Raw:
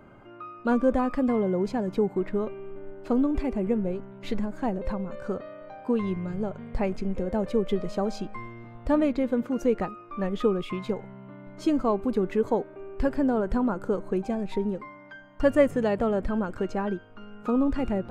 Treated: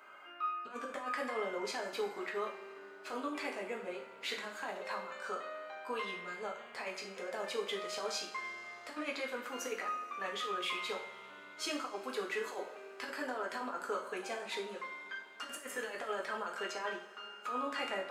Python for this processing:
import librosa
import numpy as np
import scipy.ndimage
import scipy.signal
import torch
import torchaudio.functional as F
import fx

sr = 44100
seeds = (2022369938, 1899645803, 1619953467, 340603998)

y = scipy.signal.sosfilt(scipy.signal.butter(2, 1300.0, 'highpass', fs=sr, output='sos'), x)
y = fx.over_compress(y, sr, threshold_db=-41.0, ratio=-0.5)
y = fx.rev_double_slope(y, sr, seeds[0], early_s=0.46, late_s=4.4, knee_db=-22, drr_db=-1.0)
y = y * 10.0 ** (1.0 / 20.0)